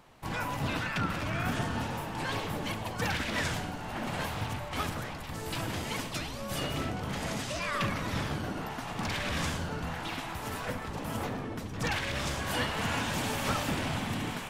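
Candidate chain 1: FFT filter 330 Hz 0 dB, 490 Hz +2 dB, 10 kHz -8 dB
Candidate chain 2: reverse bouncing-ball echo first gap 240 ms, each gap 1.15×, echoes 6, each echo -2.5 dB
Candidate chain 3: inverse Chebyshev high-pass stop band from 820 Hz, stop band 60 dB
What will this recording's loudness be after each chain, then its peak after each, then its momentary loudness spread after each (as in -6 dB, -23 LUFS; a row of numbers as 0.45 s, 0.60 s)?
-34.5 LUFS, -30.0 LUFS, -41.0 LUFS; -19.0 dBFS, -15.0 dBFS, -25.5 dBFS; 6 LU, 5 LU, 10 LU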